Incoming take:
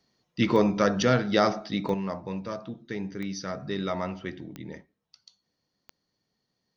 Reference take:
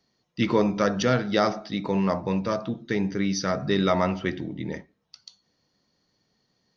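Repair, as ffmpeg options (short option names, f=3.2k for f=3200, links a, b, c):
-af "adeclick=t=4,asetnsamples=n=441:p=0,asendcmd='1.94 volume volume 8dB',volume=0dB"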